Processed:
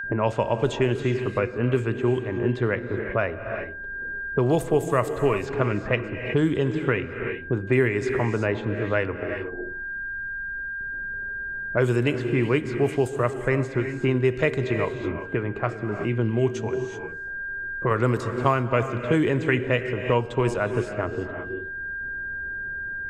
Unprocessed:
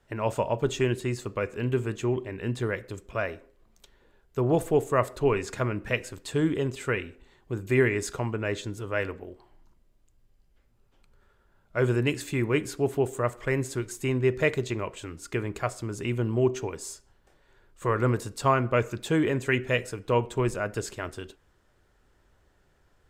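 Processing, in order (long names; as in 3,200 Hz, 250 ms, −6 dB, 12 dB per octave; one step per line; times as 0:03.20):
noise gate with hold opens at −56 dBFS
low-pass that shuts in the quiet parts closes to 390 Hz, open at −19.5 dBFS
0:15.23–0:17.91: flanger 1.4 Hz, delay 4.4 ms, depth 5.4 ms, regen +68%
steady tone 1,600 Hz −50 dBFS
reverb whose tail is shaped and stops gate 400 ms rising, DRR 10 dB
multiband upward and downward compressor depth 70%
level +3.5 dB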